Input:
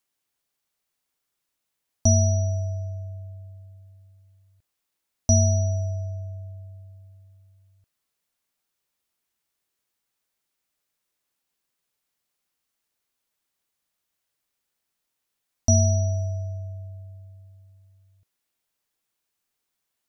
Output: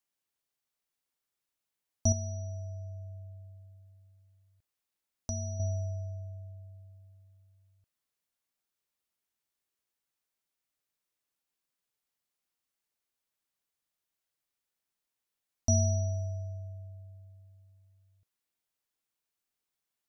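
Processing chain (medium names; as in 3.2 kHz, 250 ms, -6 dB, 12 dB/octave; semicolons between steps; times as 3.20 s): 2.12–5.60 s: compression 2:1, threshold -33 dBFS, peak gain reduction 10.5 dB; trim -7.5 dB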